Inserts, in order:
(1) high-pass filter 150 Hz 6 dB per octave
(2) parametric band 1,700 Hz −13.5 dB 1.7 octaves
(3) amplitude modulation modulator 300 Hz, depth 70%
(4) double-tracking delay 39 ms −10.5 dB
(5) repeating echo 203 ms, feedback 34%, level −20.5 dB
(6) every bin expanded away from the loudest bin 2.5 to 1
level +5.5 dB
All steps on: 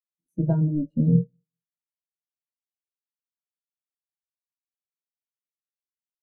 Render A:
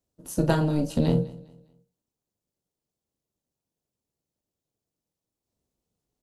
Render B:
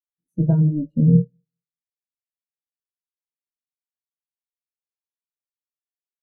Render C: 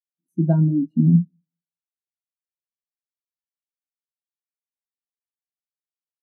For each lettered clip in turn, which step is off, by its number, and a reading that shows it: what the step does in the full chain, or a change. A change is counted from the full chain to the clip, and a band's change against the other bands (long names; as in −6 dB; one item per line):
6, change in crest factor +1.5 dB
1, change in crest factor −1.5 dB
3, change in crest factor −2.5 dB